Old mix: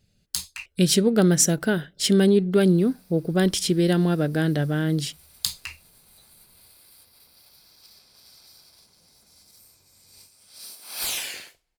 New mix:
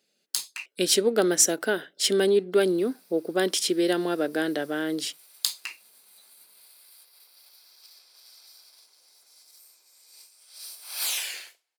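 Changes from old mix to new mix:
background: add high-pass filter 950 Hz 6 dB per octave
master: add high-pass filter 300 Hz 24 dB per octave

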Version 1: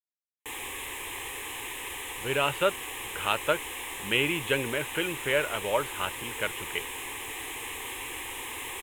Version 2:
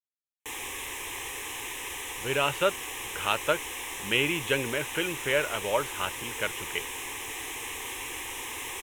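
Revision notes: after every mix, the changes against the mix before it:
master: add parametric band 5,800 Hz +12.5 dB 0.32 octaves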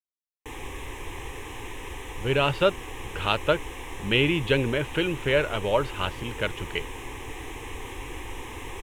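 speech: remove high-frequency loss of the air 440 metres
master: add spectral tilt −3.5 dB per octave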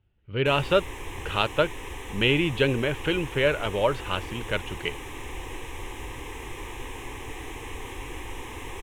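speech: entry −1.90 s

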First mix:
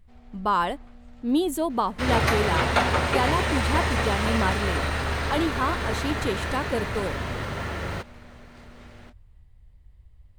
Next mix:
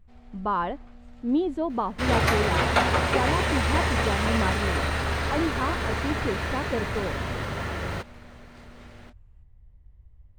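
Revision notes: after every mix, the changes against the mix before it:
speech: add head-to-tape spacing loss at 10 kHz 33 dB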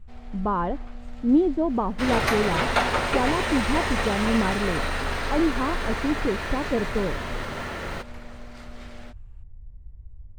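speech: add spectral tilt −4 dB per octave
first sound +8.5 dB
master: add low-shelf EQ 130 Hz −10.5 dB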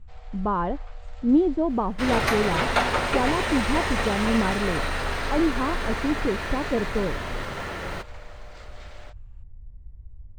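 first sound: add Chebyshev band-pass filter 470–7,800 Hz, order 4

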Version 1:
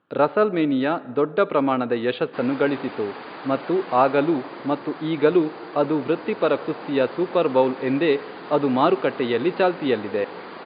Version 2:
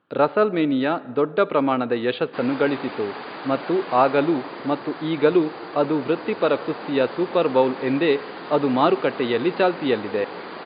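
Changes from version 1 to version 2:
background: send on
master: remove high-frequency loss of the air 77 metres

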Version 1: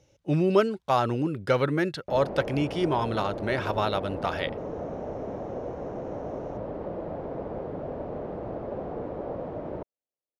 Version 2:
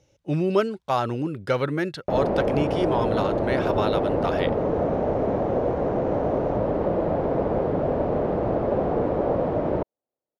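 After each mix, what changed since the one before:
background +11.0 dB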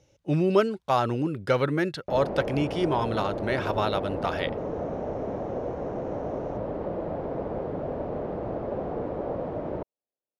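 background −8.0 dB

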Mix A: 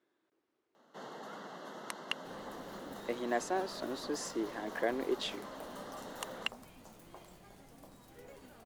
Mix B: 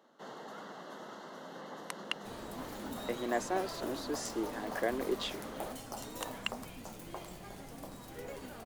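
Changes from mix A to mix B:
first sound: entry −0.75 s
second sound +9.0 dB

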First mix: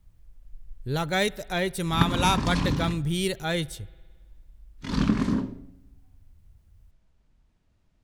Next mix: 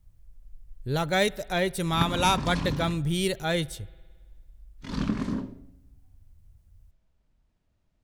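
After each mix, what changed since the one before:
background −5.0 dB
master: add parametric band 600 Hz +3 dB 0.52 octaves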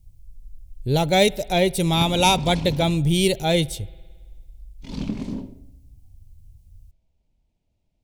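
speech +7.5 dB
master: add flat-topped bell 1,400 Hz −12 dB 1 octave

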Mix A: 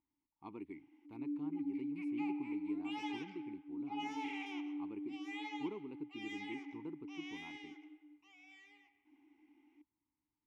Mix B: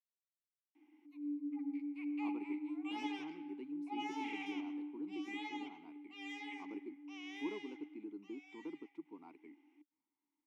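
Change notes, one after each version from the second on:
speech: entry +1.80 s
master: add high-pass filter 230 Hz 24 dB per octave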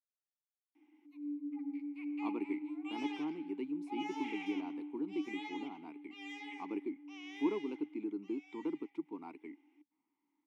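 speech +8.5 dB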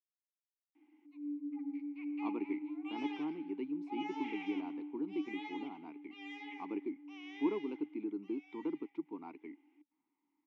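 master: add Gaussian smoothing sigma 1.6 samples

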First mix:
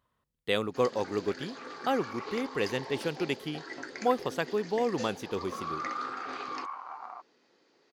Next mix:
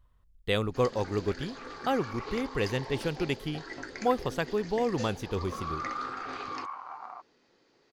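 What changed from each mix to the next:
master: remove high-pass filter 190 Hz 12 dB per octave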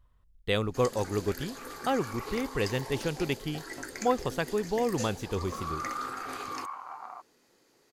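first sound: remove low-pass filter 5,200 Hz 24 dB per octave

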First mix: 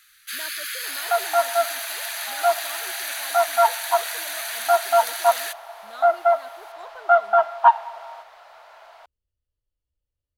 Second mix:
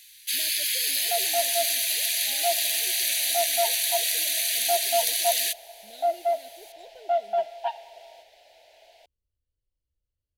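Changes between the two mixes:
first sound +6.5 dB
master: add Butterworth band-reject 1,200 Hz, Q 0.63

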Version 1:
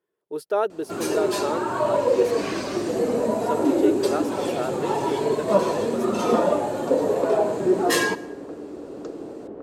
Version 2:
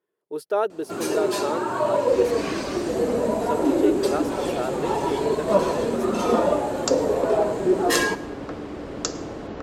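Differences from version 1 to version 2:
second sound: remove resonant band-pass 390 Hz, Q 1.6
master: add low-shelf EQ 72 Hz −5.5 dB

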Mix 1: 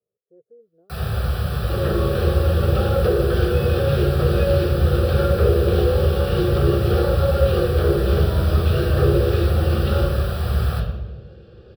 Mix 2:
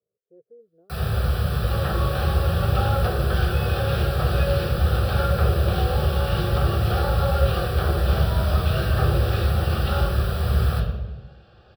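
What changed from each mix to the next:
second sound: add low shelf with overshoot 580 Hz −7.5 dB, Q 3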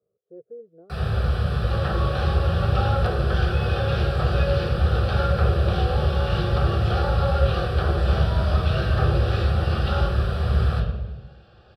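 speech +9.0 dB
first sound: add high-frequency loss of the air 79 metres

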